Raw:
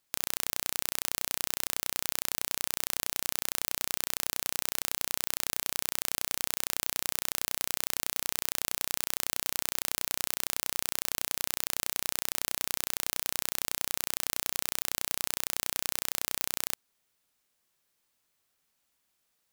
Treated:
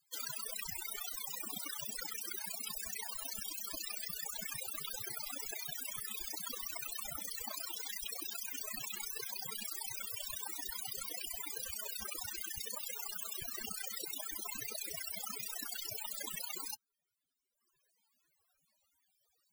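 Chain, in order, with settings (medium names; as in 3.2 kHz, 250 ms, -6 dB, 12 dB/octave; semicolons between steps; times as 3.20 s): reverb removal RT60 1.3 s; loudest bins only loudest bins 32; trim +11 dB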